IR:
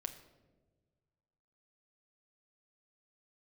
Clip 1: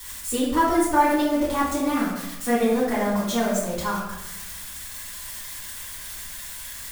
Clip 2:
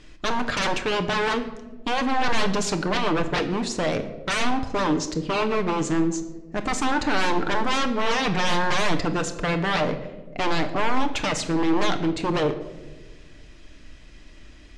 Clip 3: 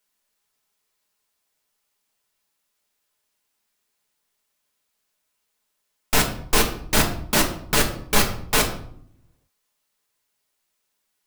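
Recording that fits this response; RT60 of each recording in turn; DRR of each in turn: 2; 0.95, 1.4, 0.65 seconds; −11.5, 6.5, 0.0 decibels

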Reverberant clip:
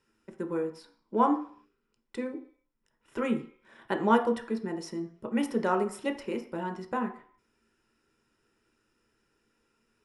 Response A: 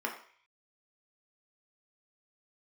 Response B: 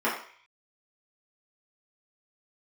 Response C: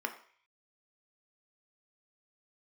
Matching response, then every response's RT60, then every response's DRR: C; 0.50, 0.50, 0.50 seconds; −0.5, −9.0, 4.5 decibels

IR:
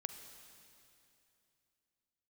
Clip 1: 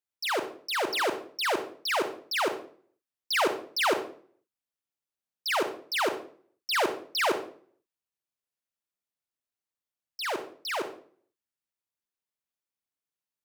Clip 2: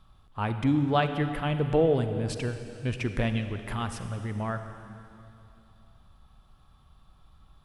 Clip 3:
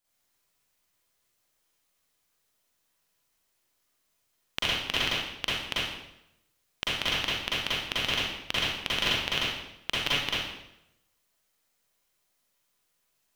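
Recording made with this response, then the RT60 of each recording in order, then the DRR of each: 2; 0.50, 2.8, 0.85 seconds; 7.0, 8.0, −9.0 decibels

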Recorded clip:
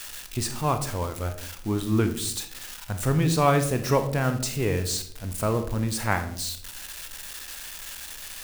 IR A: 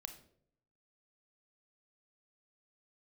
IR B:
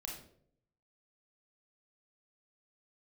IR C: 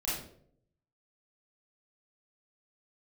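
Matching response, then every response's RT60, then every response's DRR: A; 0.65, 0.65, 0.60 seconds; 7.0, −1.0, −9.0 decibels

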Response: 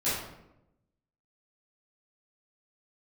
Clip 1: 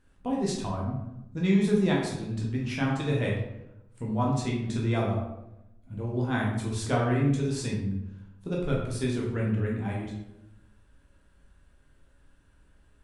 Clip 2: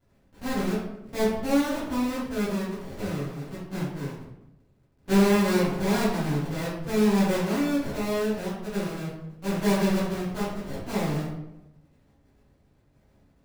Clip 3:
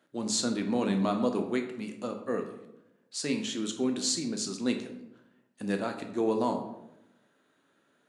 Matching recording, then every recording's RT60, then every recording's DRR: 2; 0.90, 0.90, 0.90 seconds; −3.5, −13.5, 4.5 decibels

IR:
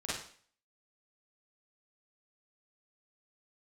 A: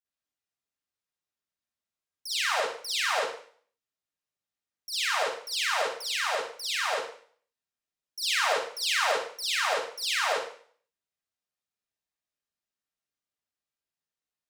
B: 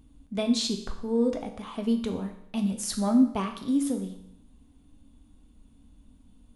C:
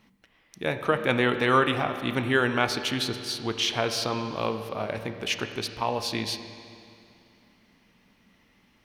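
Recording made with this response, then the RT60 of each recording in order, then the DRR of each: A; 0.50, 0.70, 2.5 seconds; −9.5, 4.5, 7.5 decibels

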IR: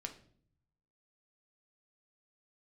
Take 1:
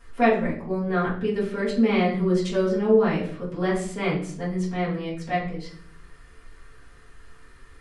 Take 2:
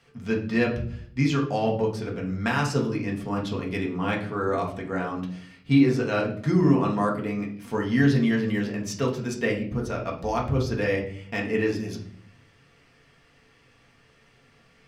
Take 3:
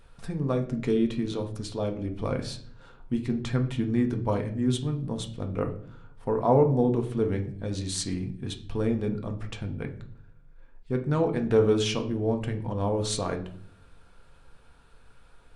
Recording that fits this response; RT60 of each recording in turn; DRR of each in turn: 3; 0.55, 0.55, 0.55 seconds; −10.0, −2.0, 4.0 decibels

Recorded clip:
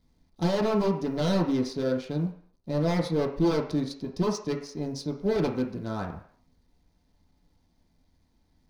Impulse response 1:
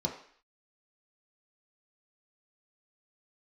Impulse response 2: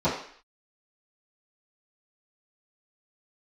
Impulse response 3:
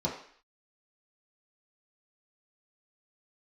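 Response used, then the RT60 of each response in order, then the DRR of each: 1; 0.55, 0.55, 0.55 seconds; −1.0, −15.5, −5.5 decibels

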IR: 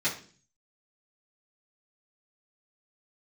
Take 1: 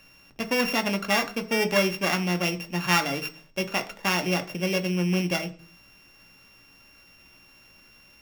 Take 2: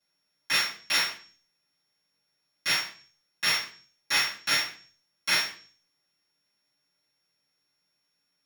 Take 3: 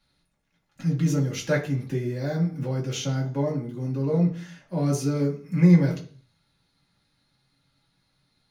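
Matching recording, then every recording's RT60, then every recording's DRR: 2; 0.45, 0.45, 0.45 seconds; 5.0, −11.5, −4.5 decibels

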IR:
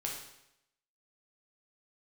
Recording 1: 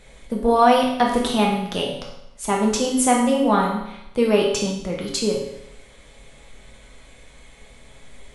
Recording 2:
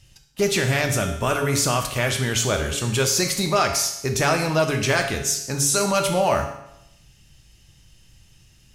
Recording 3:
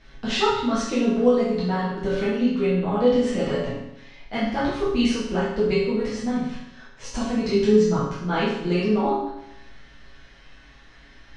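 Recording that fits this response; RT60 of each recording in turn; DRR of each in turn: 1; 0.80, 0.80, 0.80 seconds; −2.0, 3.5, −10.5 decibels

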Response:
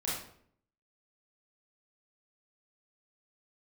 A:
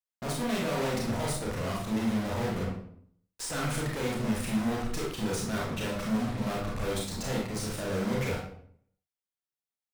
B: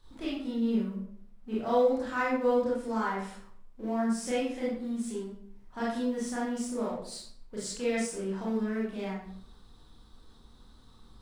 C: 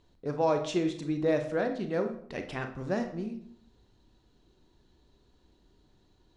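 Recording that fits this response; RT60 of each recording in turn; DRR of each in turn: B; 0.60, 0.60, 0.60 seconds; −3.5, −7.5, 6.0 decibels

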